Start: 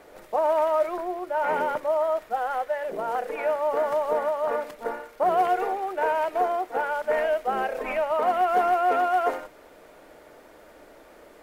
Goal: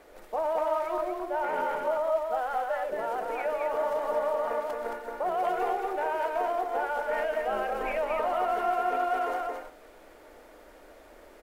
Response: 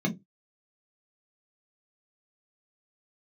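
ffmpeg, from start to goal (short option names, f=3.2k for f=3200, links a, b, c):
-af "equalizer=f=130:t=o:w=1.2:g=-12,bandreject=f=56.07:t=h:w=4,bandreject=f=112.14:t=h:w=4,bandreject=f=168.21:t=h:w=4,bandreject=f=224.28:t=h:w=4,bandreject=f=280.35:t=h:w=4,bandreject=f=336.42:t=h:w=4,bandreject=f=392.49:t=h:w=4,bandreject=f=448.56:t=h:w=4,bandreject=f=504.63:t=h:w=4,bandreject=f=560.7:t=h:w=4,bandreject=f=616.77:t=h:w=4,bandreject=f=672.84:t=h:w=4,bandreject=f=728.91:t=h:w=4,bandreject=f=784.98:t=h:w=4,bandreject=f=841.05:t=h:w=4,bandreject=f=897.12:t=h:w=4,bandreject=f=953.19:t=h:w=4,bandreject=f=1.00926k:t=h:w=4,bandreject=f=1.06533k:t=h:w=4,bandreject=f=1.1214k:t=h:w=4,bandreject=f=1.17747k:t=h:w=4,bandreject=f=1.23354k:t=h:w=4,bandreject=f=1.28961k:t=h:w=4,bandreject=f=1.34568k:t=h:w=4,bandreject=f=1.40175k:t=h:w=4,bandreject=f=1.45782k:t=h:w=4,bandreject=f=1.51389k:t=h:w=4,bandreject=f=1.56996k:t=h:w=4,alimiter=limit=-19dB:level=0:latency=1:release=48,lowshelf=f=190:g=8,aecho=1:1:221:0.668,volume=-3.5dB"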